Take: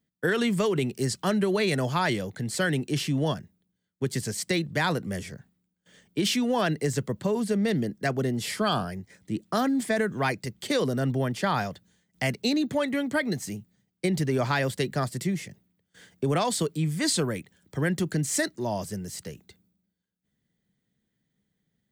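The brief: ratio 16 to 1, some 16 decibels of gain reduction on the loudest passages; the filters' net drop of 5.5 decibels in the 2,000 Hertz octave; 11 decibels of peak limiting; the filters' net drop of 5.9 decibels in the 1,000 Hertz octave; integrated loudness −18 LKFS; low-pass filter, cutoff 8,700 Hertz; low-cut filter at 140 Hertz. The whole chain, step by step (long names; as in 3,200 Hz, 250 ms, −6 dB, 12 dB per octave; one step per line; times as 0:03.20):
high-pass filter 140 Hz
low-pass filter 8,700 Hz
parametric band 1,000 Hz −7 dB
parametric band 2,000 Hz −4.5 dB
downward compressor 16 to 1, threshold −39 dBFS
level +27 dB
brickwall limiter −8 dBFS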